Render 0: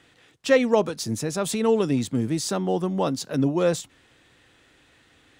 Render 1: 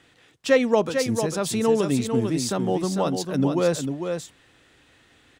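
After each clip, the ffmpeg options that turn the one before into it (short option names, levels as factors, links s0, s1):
-af "aecho=1:1:449:0.473"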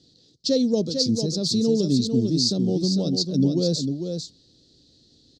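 -af "firequalizer=gain_entry='entry(100,0);entry(170,5);entry(560,-6);entry(970,-26);entry(2300,-27);entry(4300,14);entry(10000,-18)':delay=0.05:min_phase=1"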